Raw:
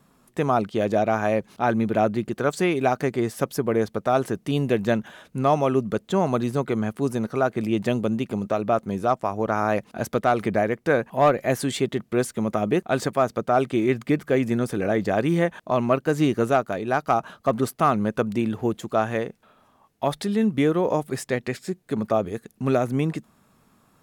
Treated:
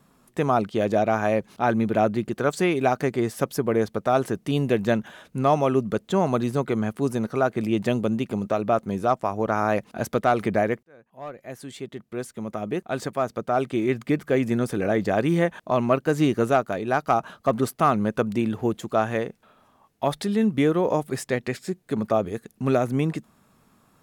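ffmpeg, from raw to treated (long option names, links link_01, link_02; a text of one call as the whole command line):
ffmpeg -i in.wav -filter_complex "[0:a]asplit=2[link_01][link_02];[link_01]atrim=end=10.83,asetpts=PTS-STARTPTS,afade=type=out:start_time=10.826:duration=0.004:curve=hsin[link_03];[link_02]atrim=start=10.83,asetpts=PTS-STARTPTS,afade=type=in:duration=3.78[link_04];[link_03][link_04]concat=n=2:v=0:a=1" out.wav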